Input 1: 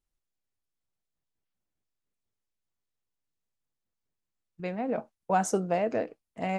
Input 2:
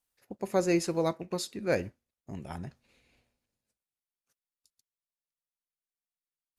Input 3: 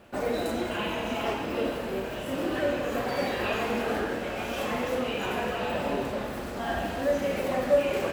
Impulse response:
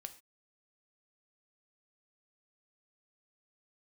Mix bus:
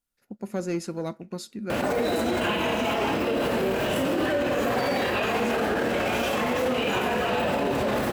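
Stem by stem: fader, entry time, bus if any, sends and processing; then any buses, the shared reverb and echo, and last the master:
-7.0 dB, 0.00 s, no send, none
-3.5 dB, 0.00 s, no send, saturation -18.5 dBFS, distortion -20 dB; small resonant body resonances 220/1400 Hz, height 11 dB
+2.5 dB, 1.70 s, no send, high-pass 71 Hz; level flattener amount 70%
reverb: none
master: peak limiter -17 dBFS, peak gain reduction 10 dB

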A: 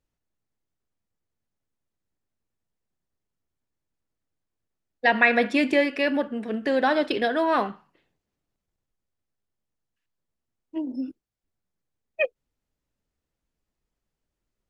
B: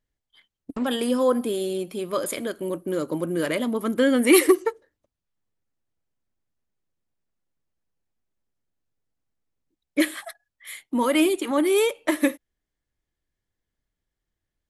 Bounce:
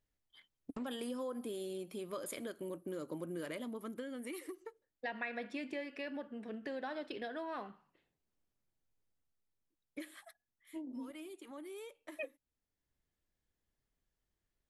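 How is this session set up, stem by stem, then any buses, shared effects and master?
-9.0 dB, 0.00 s, no send, none
-5.5 dB, 0.00 s, no send, compression, threshold -19 dBFS, peak gain reduction 8 dB; auto duck -19 dB, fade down 1.65 s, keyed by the first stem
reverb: none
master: compression 2.5:1, threshold -44 dBFS, peak gain reduction 14 dB

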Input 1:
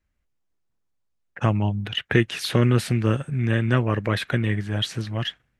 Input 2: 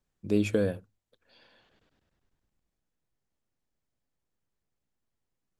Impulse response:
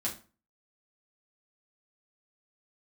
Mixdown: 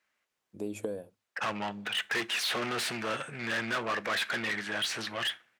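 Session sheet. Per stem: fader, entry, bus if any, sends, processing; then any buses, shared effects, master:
-17.0 dB, 0.00 s, send -17 dB, overdrive pedal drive 32 dB, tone 4.4 kHz, clips at -4.5 dBFS
-1.5 dB, 0.30 s, no send, level rider gain up to 15.5 dB; high-order bell 2.6 kHz -11 dB 2.6 oct; compression 3:1, threshold -26 dBFS, peak gain reduction 10.5 dB; auto duck -15 dB, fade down 0.55 s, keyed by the first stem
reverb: on, RT60 0.35 s, pre-delay 5 ms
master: high-pass 590 Hz 6 dB/octave

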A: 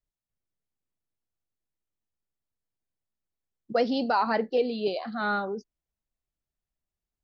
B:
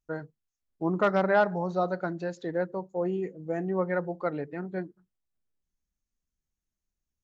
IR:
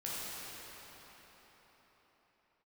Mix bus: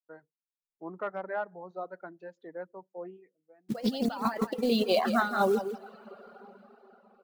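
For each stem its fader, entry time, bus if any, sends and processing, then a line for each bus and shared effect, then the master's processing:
+1.0 dB, 0.00 s, send -15.5 dB, echo send -6 dB, level-controlled noise filter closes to 730 Hz, open at -22.5 dBFS; compressor with a negative ratio -31 dBFS, ratio -0.5; companded quantiser 6-bit
-13.0 dB, 0.00 s, no send, no echo send, three-band isolator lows -21 dB, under 210 Hz, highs -19 dB, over 2.7 kHz; auto duck -22 dB, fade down 0.65 s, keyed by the first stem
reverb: on, RT60 4.8 s, pre-delay 11 ms
echo: feedback delay 165 ms, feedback 25%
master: level rider gain up to 3.5 dB; peaking EQ 280 Hz -2.5 dB 0.77 oct; reverb removal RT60 0.93 s

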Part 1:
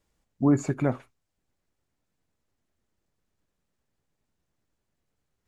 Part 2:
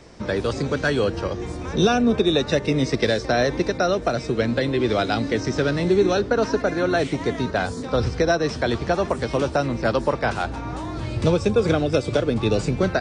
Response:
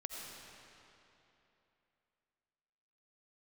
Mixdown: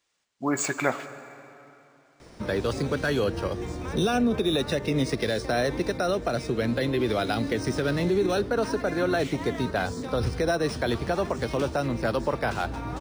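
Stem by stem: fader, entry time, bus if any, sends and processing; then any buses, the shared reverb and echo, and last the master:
0.0 dB, 0.00 s, send -7 dB, high-pass 700 Hz 6 dB/octave; tilt shelf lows -7 dB, about 1.3 kHz; level rider gain up to 9 dB
-3.0 dB, 2.20 s, no send, treble shelf 6.1 kHz +7 dB; peak limiter -12.5 dBFS, peak gain reduction 5 dB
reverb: on, RT60 3.1 s, pre-delay 45 ms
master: decimation joined by straight lines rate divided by 3×

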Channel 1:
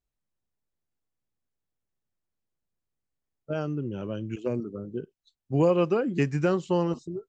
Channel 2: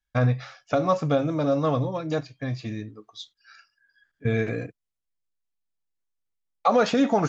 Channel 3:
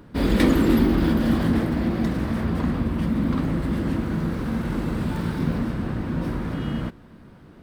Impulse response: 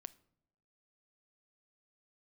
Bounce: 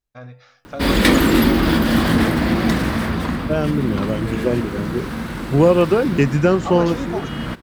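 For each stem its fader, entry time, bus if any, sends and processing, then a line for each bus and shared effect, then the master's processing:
+1.5 dB, 0.00 s, no send, none
-16.0 dB, 0.00 s, send -4 dB, bass shelf 180 Hz -9.5 dB; de-hum 98.84 Hz, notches 30
+1.5 dB, 0.65 s, no send, tilt shelf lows -5 dB, about 800 Hz; auto duck -7 dB, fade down 0.75 s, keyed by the first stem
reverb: on, pre-delay 7 ms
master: level rider gain up to 9 dB

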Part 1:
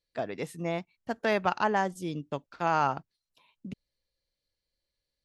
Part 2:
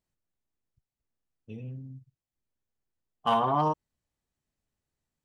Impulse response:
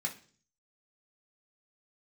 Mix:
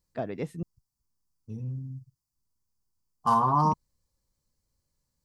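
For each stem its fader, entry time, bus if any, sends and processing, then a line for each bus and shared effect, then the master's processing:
-2.0 dB, 0.00 s, muted 0.63–3.23 s, no send, treble shelf 3.1 kHz -7.5 dB
-2.5 dB, 0.00 s, no send, FFT filter 150 Hz 0 dB, 680 Hz -6 dB, 1 kHz +8 dB, 2.3 kHz -12 dB, 3.3 kHz -13 dB, 4.7 kHz +12 dB, 7.6 kHz +10 dB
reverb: none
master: bass shelf 310 Hz +9.5 dB

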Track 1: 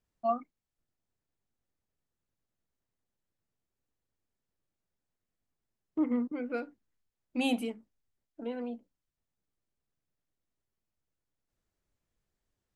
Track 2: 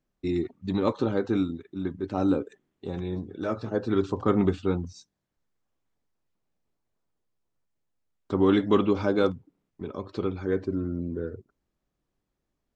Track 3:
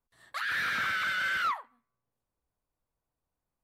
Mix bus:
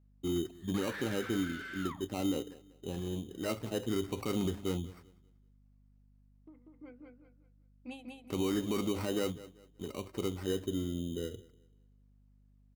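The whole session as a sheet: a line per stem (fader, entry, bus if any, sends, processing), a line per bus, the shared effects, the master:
-12.5 dB, 0.50 s, no send, echo send -3 dB, endings held to a fixed fall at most 110 dB/s
-5.5 dB, 0.00 s, no send, echo send -22 dB, treble shelf 4.6 kHz -9.5 dB; sample-and-hold 13×
-5.5 dB, 0.40 s, no send, no echo send, auto duck -9 dB, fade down 1.30 s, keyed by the second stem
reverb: none
echo: feedback delay 192 ms, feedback 30%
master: hum 50 Hz, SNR 29 dB; peak limiter -24 dBFS, peak gain reduction 9.5 dB

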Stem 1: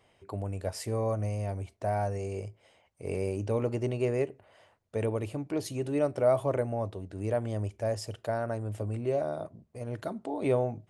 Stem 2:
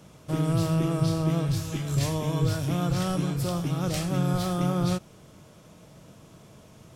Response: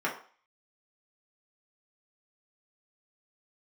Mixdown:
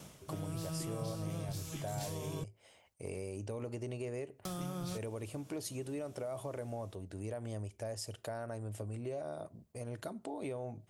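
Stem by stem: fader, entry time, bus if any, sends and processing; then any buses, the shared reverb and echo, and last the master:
-2.0 dB, 0.00 s, no send, peak limiter -22.5 dBFS, peak gain reduction 8.5 dB
0.0 dB, 0.00 s, muted 2.44–4.45 s, no send, level rider gain up to 4 dB; auto duck -11 dB, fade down 0.20 s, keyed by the first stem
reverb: none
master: gate with hold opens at -59 dBFS; treble shelf 4.8 kHz +10.5 dB; compression 2.5:1, threshold -41 dBFS, peak gain reduction 11.5 dB

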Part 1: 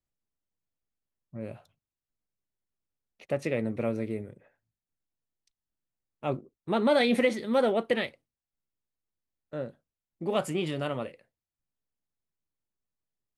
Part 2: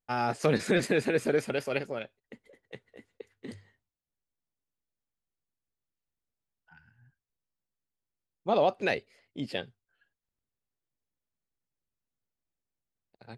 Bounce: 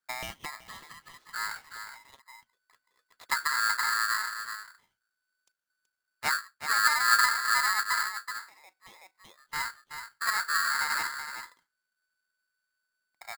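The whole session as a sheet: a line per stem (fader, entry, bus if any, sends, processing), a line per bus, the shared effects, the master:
+1.0 dB, 0.00 s, no send, echo send -8.5 dB, octave divider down 1 oct, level +2 dB; low-pass that closes with the level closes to 330 Hz, closed at -24 dBFS
0.0 dB, 0.00 s, no send, echo send -21.5 dB, expander -57 dBFS; compression 6:1, threshold -34 dBFS, peak gain reduction 13 dB; step-sequenced low-pass 4.4 Hz 580–3700 Hz; auto duck -23 dB, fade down 1.60 s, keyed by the first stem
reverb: none
echo: delay 377 ms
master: polarity switched at an audio rate 1.5 kHz

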